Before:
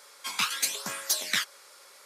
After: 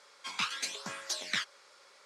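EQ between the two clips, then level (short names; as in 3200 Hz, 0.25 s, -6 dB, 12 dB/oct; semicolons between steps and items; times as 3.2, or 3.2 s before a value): air absorption 110 m; low shelf 110 Hz +4 dB; high shelf 6000 Hz +6 dB; -4.0 dB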